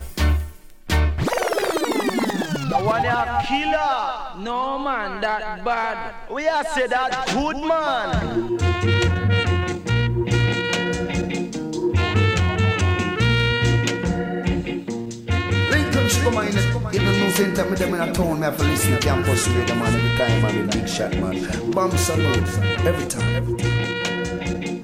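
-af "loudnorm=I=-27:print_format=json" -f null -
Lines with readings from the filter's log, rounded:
"input_i" : "-21.2",
"input_tp" : "-5.2",
"input_lra" : "2.8",
"input_thresh" : "-31.2",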